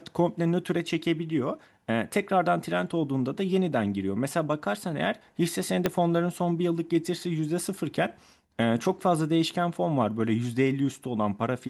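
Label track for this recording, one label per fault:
5.860000	5.860000	pop -9 dBFS

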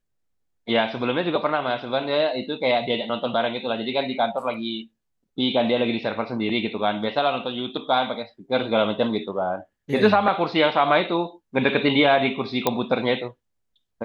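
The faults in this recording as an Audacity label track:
12.670000	12.670000	pop -5 dBFS

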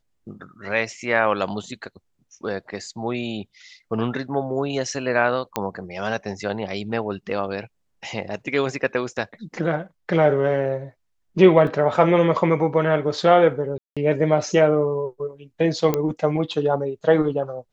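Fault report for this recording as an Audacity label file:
5.560000	5.560000	pop -8 dBFS
11.670000	11.670000	dropout 2.5 ms
13.780000	13.970000	dropout 186 ms
15.940000	15.940000	pop -8 dBFS

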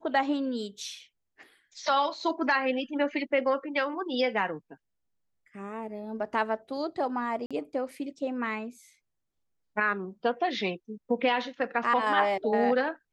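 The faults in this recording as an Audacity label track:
7.460000	7.510000	dropout 46 ms

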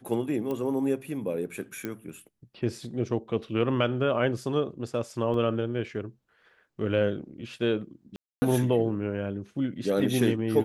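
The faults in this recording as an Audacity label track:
0.510000	0.510000	pop -21 dBFS
1.850000	1.850000	pop -19 dBFS
5.340000	5.340000	dropout 2.4 ms
8.160000	8.420000	dropout 260 ms

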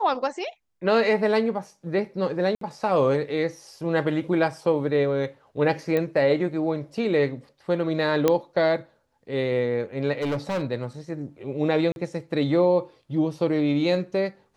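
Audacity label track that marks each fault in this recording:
2.550000	2.610000	dropout 63 ms
5.970000	5.970000	pop -14 dBFS
8.280000	8.280000	pop -7 dBFS
10.170000	10.630000	clipped -22.5 dBFS
11.920000	11.960000	dropout 41 ms

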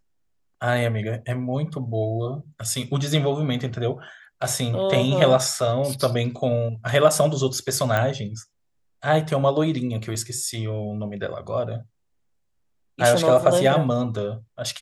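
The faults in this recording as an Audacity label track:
7.970000	7.970000	pop -10 dBFS

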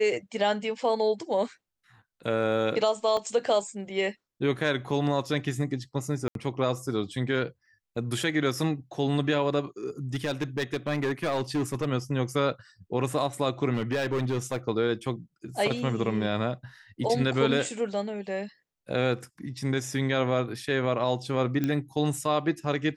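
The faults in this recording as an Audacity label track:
3.170000	3.170000	dropout 2.2 ms
6.280000	6.350000	dropout 72 ms
10.140000	11.860000	clipped -23 dBFS
13.730000	14.570000	clipped -23 dBFS
21.640000	21.640000	pop -15 dBFS

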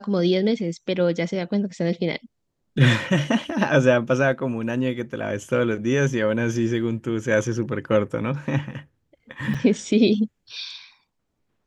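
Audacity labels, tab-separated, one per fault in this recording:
9.540000	9.550000	dropout 5.8 ms

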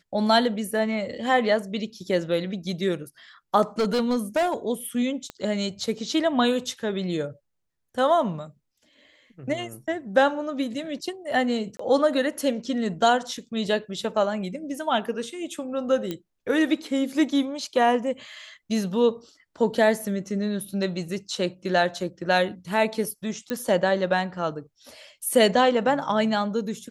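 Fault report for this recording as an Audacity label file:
3.790000	4.540000	clipped -19 dBFS
5.300000	5.300000	pop -20 dBFS
11.770000	11.790000	dropout 24 ms
16.110000	16.110000	pop -16 dBFS
23.500000	23.500000	pop -15 dBFS

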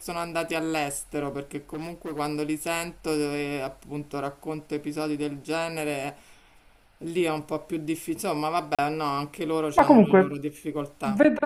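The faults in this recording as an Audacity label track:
1.730000	2.200000	clipped -30 dBFS
8.750000	8.790000	dropout 36 ms
9.790000	9.790000	dropout 2 ms

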